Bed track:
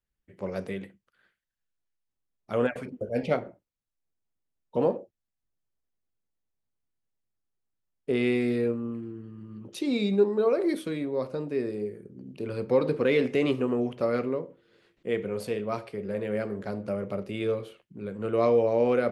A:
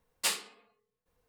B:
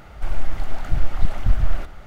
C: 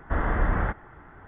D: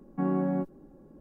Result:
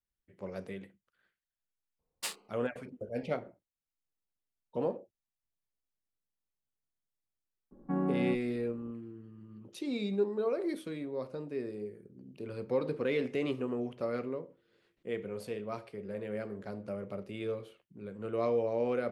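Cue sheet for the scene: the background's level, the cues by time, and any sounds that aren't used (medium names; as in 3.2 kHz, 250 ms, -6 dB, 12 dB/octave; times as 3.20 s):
bed track -8 dB
1.99 s: add A -7.5 dB + local Wiener filter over 25 samples
7.71 s: add D -4 dB + level-controlled noise filter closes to 1.4 kHz, open at -28.5 dBFS
not used: B, C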